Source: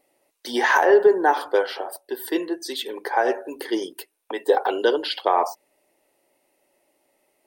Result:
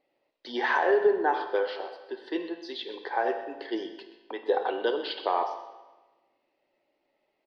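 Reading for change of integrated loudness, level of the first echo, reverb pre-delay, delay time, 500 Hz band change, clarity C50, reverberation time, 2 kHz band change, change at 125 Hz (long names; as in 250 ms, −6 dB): −7.0 dB, −15.0 dB, 18 ms, 127 ms, −7.0 dB, 8.5 dB, 1.2 s, −7.0 dB, can't be measured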